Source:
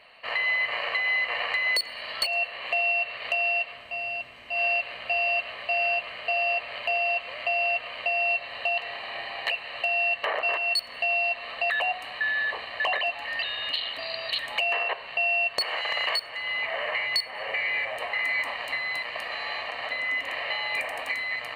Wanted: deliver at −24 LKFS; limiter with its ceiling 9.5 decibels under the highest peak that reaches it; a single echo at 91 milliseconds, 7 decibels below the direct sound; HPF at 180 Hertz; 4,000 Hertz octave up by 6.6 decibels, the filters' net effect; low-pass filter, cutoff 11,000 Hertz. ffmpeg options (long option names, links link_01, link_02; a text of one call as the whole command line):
ffmpeg -i in.wav -af "highpass=180,lowpass=11000,equalizer=frequency=4000:width_type=o:gain=9,alimiter=limit=-17dB:level=0:latency=1,aecho=1:1:91:0.447,volume=0.5dB" out.wav